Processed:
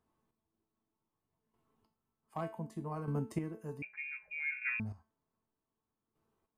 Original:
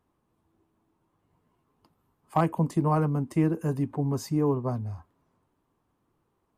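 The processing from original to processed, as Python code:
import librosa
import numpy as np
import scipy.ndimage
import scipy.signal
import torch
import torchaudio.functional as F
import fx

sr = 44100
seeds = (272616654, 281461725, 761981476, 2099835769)

y = fx.comb_fb(x, sr, f0_hz=220.0, decay_s=0.37, harmonics='all', damping=0.0, mix_pct=80)
y = fx.chopper(y, sr, hz=0.65, depth_pct=65, duty_pct=20)
y = fx.freq_invert(y, sr, carrier_hz=2600, at=(3.82, 4.8))
y = y * 10.0 ** (4.5 / 20.0)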